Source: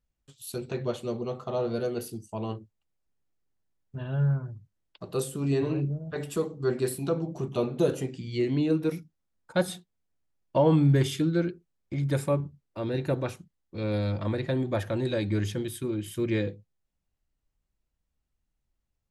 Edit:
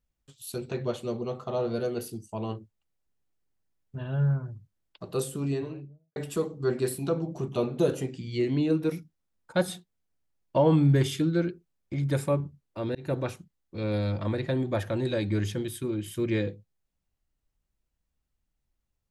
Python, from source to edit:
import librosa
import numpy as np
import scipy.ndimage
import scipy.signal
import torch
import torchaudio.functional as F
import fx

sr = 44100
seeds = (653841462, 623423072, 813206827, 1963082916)

y = fx.edit(x, sr, fx.fade_out_span(start_s=5.39, length_s=0.77, curve='qua'),
    fx.fade_in_span(start_s=12.95, length_s=0.28, curve='qsin'), tone=tone)